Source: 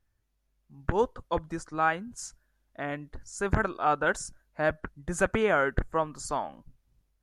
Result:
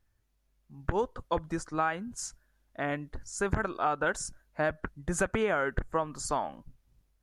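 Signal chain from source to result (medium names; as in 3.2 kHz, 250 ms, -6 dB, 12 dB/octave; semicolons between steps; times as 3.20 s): compression 10:1, threshold -26 dBFS, peak gain reduction 8 dB; trim +2 dB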